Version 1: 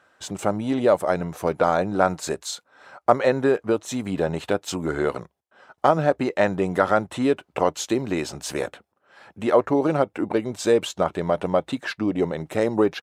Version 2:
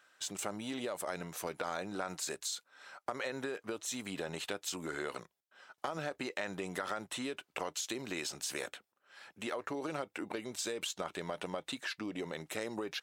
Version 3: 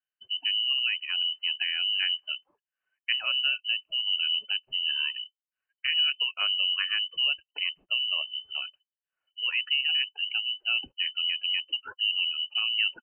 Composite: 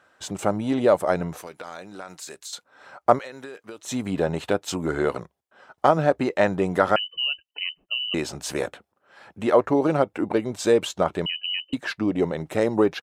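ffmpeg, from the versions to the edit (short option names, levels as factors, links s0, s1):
-filter_complex "[1:a]asplit=2[s0][s1];[2:a]asplit=2[s2][s3];[0:a]asplit=5[s4][s5][s6][s7][s8];[s4]atrim=end=1.412[s9];[s0]atrim=start=1.408:end=2.532[s10];[s5]atrim=start=2.528:end=3.192[s11];[s1]atrim=start=3.188:end=3.852[s12];[s6]atrim=start=3.848:end=6.962[s13];[s2]atrim=start=6.958:end=8.142[s14];[s7]atrim=start=8.138:end=11.262[s15];[s3]atrim=start=11.258:end=11.732[s16];[s8]atrim=start=11.728[s17];[s9][s10]acrossfade=d=0.004:c1=hsin:c2=hsin[s18];[s18][s11]acrossfade=d=0.004:c1=hsin:c2=hsin[s19];[s19][s12]acrossfade=d=0.004:c1=hsin:c2=hsin[s20];[s20][s13]acrossfade=d=0.004:c1=hsin:c2=hsin[s21];[s21][s14]acrossfade=d=0.004:c1=hsin:c2=hsin[s22];[s22][s15]acrossfade=d=0.004:c1=hsin:c2=hsin[s23];[s23][s16]acrossfade=d=0.004:c1=hsin:c2=hsin[s24];[s24][s17]acrossfade=d=0.004:c1=hsin:c2=hsin"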